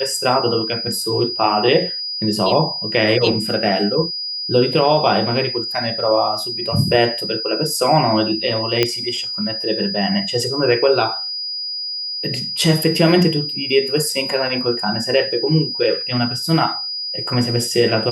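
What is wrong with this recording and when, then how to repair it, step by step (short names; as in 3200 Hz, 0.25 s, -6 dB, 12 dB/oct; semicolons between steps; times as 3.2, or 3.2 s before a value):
tone 4900 Hz -23 dBFS
8.83 pop -1 dBFS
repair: de-click; notch 4900 Hz, Q 30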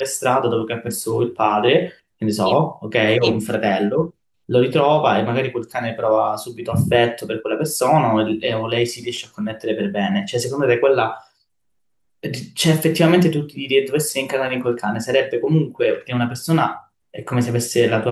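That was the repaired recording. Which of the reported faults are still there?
none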